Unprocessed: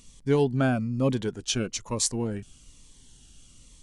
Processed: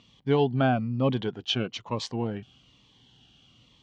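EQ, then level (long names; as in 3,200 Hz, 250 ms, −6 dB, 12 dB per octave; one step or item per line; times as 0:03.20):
loudspeaker in its box 110–4,200 Hz, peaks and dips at 120 Hz +4 dB, 760 Hz +8 dB, 1,100 Hz +3 dB, 3,100 Hz +7 dB
−1.0 dB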